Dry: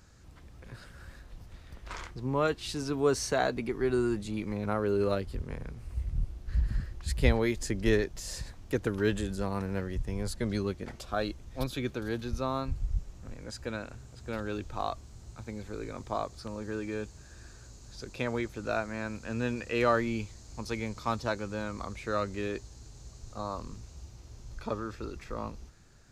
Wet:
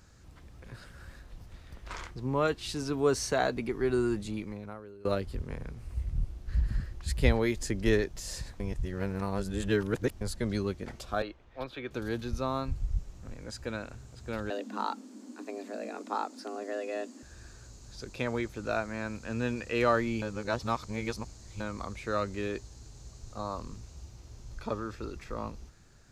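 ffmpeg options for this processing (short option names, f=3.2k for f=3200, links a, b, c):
-filter_complex "[0:a]asettb=1/sr,asplit=3[a][b][c];[a]atrim=end=11.224[d];[b]atrim=start=11.22:end=11.91,asetpts=PTS-STARTPTS,afade=t=in:d=0.004:c=qsin,afade=t=out:st=0.686:d=0.004:c=qsin,acrossover=split=380 3400:gain=0.224 1 0.0631[e][f][g];[e][f][g]amix=inputs=3:normalize=0[h];[c]atrim=start=11.906[i];[d][h]acrossfade=d=0.004:c1=hsin:c2=qsin[j];[j][i]acrossfade=d=0.004:c1=qsin:c2=hsin,asettb=1/sr,asplit=3[k][l][m];[k]atrim=end=14.504[n];[l]atrim=start=14.5:end=17.23,asetpts=PTS-STARTPTS,afade=t=in:d=0.004:c=qsin,afade=t=out:st=2.726:d=0.004:c=qsin,afreqshift=190[o];[m]atrim=start=17.226[p];[n][o]acrossfade=d=0.004:c1=hsin:c2=qsin[q];[q][p]acrossfade=d=0.004:c1=qsin:c2=hsin,asplit=6[r][s][t][u][v][w];[r]atrim=end=5.05,asetpts=PTS-STARTPTS,afade=t=out:st=4.29:d=0.76:c=qua:silence=0.0668344[x];[s]atrim=start=5.05:end=8.602,asetpts=PTS-STARTPTS,afade=t=in:d=0.004:c=hsin:silence=0.0668344[y];[t]atrim=start=8.598:end=10.212,asetpts=PTS-STARTPTS,areverse[z];[u]atrim=start=10.208:end=20.222[aa];[v]atrim=start=20.218:end=21.602,asetpts=PTS-STARTPTS,areverse[ab];[w]atrim=start=21.598[ac];[x][y]concat=n=2:v=0:a=1[ad];[ad][z]acrossfade=d=0.004:c1=hsin:c2=hsin[ae];[ae][aa]acrossfade=d=0.004:c1=hsin:c2=hsin[af];[af][ab]acrossfade=d=0.004:c1=hsin:c2=hsin[ag];[ag][ac]acrossfade=d=0.004:c1=hsin:c2=hsin"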